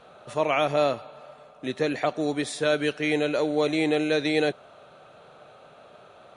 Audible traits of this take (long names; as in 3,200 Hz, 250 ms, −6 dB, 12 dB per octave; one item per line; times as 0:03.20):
background noise floor −52 dBFS
spectral slope −3.5 dB per octave